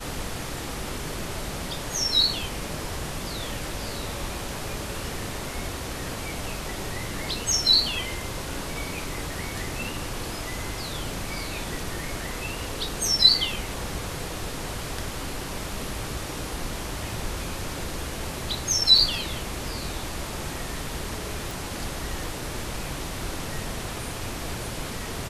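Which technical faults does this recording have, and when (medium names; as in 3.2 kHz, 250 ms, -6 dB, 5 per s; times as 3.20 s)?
18.98 s: dropout 4 ms
21.51 s: pop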